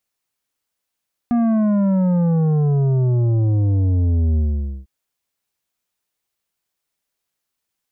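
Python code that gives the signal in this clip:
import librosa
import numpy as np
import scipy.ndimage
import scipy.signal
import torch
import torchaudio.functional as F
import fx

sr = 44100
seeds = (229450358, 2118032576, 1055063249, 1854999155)

y = fx.sub_drop(sr, level_db=-15, start_hz=240.0, length_s=3.55, drive_db=9.0, fade_s=0.49, end_hz=65.0)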